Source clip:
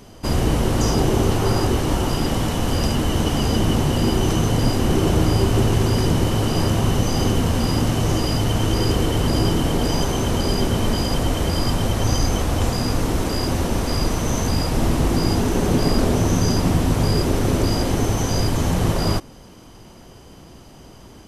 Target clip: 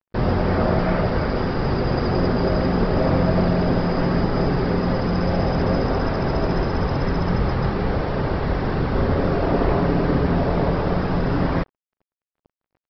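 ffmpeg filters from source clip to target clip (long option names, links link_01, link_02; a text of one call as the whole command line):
ffmpeg -i in.wav -af "afftdn=noise_reduction=15:noise_floor=-32,equalizer=frequency=2600:width=0.7:gain=-4.5,asetrate=72765,aresample=44100,aresample=11025,acrusher=bits=5:mix=0:aa=0.5,aresample=44100,volume=-1dB" out.wav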